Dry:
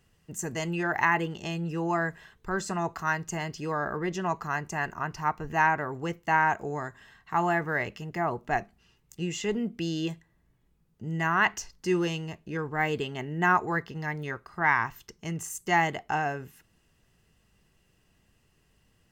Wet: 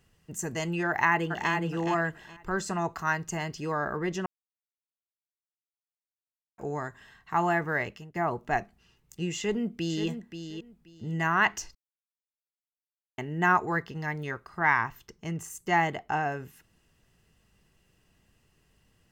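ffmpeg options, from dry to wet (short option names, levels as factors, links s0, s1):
-filter_complex "[0:a]asplit=2[s0][s1];[s1]afade=t=in:st=0.88:d=0.01,afade=t=out:st=1.52:d=0.01,aecho=0:1:420|840|1260:0.562341|0.140585|0.0351463[s2];[s0][s2]amix=inputs=2:normalize=0,asplit=2[s3][s4];[s4]afade=t=in:st=9.36:d=0.01,afade=t=out:st=10.07:d=0.01,aecho=0:1:530|1060|1590:0.354813|0.0709627|0.0141925[s5];[s3][s5]amix=inputs=2:normalize=0,asettb=1/sr,asplit=3[s6][s7][s8];[s6]atrim=end=14.814[s9];[s7]atrim=start=14.81:end=16.32,asetpts=PTS-STARTPTS,afade=t=in:d=0.004:c=qsin,afade=t=out:st=1.506:d=0.004:c=qsin,equalizer=f=8600:w=0.31:g=-5[s10];[s8]atrim=start=16.316[s11];[s9][s10]acrossfade=d=0.004:c1=hsin:c2=qsin[s12];[s12][s11]acrossfade=d=0.004:c1=qsin:c2=hsin,asplit=6[s13][s14][s15][s16][s17][s18];[s13]atrim=end=4.26,asetpts=PTS-STARTPTS,afade=t=out:st=4.256:d=0.004:c=hsin[s19];[s14]atrim=start=4.26:end=6.58,asetpts=PTS-STARTPTS,volume=0[s20];[s15]atrim=start=6.58:end=8.15,asetpts=PTS-STARTPTS,afade=t=in:d=0.004:c=hsin,afade=t=out:st=1.13:d=0.44:c=qsin:silence=0.112202[s21];[s16]atrim=start=8.15:end=11.75,asetpts=PTS-STARTPTS,afade=t=in:d=0.004:c=hsin:silence=0.112202,afade=t=out:st=3.596:d=0.004:c=hsin[s22];[s17]atrim=start=11.75:end=13.18,asetpts=PTS-STARTPTS,volume=0[s23];[s18]atrim=start=13.18,asetpts=PTS-STARTPTS,afade=t=in:d=0.004:c=hsin[s24];[s19][s20][s21][s22][s23][s24]concat=n=6:v=0:a=1"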